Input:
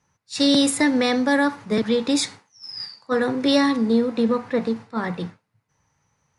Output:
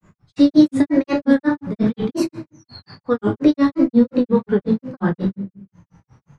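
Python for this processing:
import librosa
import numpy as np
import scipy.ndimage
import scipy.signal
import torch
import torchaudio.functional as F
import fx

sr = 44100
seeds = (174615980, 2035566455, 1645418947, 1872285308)

y = fx.low_shelf(x, sr, hz=400.0, db=12.0)
y = fx.room_shoebox(y, sr, seeds[0], volume_m3=51.0, walls='mixed', distance_m=0.66)
y = fx.granulator(y, sr, seeds[1], grain_ms=148.0, per_s=5.6, spray_ms=12.0, spread_st=3)
y = fx.high_shelf(y, sr, hz=4100.0, db=-11.5)
y = fx.band_squash(y, sr, depth_pct=40)
y = y * 10.0 ** (-2.0 / 20.0)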